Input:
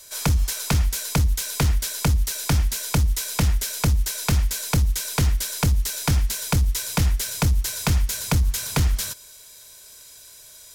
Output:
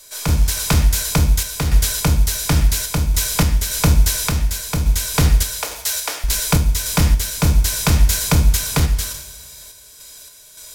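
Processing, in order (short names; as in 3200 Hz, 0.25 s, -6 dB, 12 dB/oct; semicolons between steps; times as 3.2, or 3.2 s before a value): 5.54–6.24 HPF 470 Hz 24 dB/oct; in parallel at -7.5 dB: sine folder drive 6 dB, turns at -8.5 dBFS; on the sum: two-slope reverb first 0.66 s, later 3.1 s, from -26 dB, DRR 5 dB; random-step tremolo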